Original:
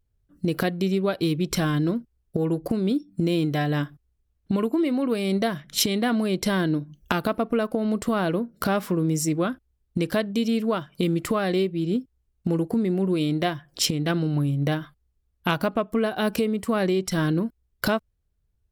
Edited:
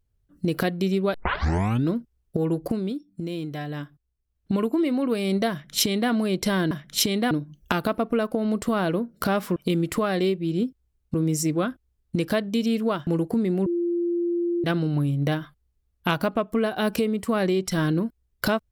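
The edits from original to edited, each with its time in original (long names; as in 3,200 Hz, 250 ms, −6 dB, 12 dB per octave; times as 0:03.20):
0:01.14: tape start 0.76 s
0:02.67–0:04.54: duck −8 dB, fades 0.29 s
0:05.51–0:06.11: duplicate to 0:06.71
0:10.89–0:12.47: move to 0:08.96
0:13.06–0:14.04: beep over 345 Hz −21.5 dBFS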